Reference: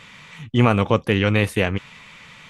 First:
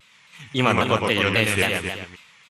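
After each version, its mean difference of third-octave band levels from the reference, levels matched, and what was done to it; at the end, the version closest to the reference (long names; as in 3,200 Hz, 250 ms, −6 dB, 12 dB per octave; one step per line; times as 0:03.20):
8.0 dB: noise gate −40 dBFS, range −12 dB
spectral tilt +2.5 dB per octave
multi-tap delay 113/266/374 ms −4.5/−8/−15 dB
pitch modulation by a square or saw wave saw down 3.7 Hz, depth 160 cents
level −1 dB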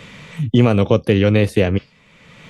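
4.0 dB: dynamic equaliser 4,700 Hz, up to +8 dB, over −46 dBFS, Q 1.7
noise reduction from a noise print of the clip's start 15 dB
low shelf with overshoot 710 Hz +6.5 dB, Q 1.5
multiband upward and downward compressor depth 70%
level −2.5 dB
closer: second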